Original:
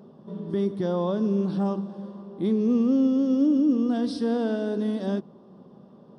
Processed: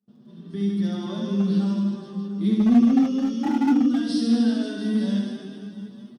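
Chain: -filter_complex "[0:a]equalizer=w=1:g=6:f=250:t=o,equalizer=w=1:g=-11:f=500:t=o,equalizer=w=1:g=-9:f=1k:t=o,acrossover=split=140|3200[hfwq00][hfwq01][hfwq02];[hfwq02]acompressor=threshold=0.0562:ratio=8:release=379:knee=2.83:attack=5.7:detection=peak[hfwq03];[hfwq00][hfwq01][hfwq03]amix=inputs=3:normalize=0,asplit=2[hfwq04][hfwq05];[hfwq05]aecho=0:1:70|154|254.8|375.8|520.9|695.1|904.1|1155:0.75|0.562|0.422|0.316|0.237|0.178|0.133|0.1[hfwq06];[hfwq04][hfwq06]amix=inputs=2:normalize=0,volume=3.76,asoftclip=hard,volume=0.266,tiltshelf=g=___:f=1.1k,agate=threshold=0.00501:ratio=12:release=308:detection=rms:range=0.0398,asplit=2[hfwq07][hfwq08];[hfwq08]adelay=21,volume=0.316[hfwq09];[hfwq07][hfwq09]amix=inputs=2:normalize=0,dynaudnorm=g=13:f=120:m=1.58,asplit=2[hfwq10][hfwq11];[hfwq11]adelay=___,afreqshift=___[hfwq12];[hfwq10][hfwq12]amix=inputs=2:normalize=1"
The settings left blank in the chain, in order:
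-4, 6.8, 1.2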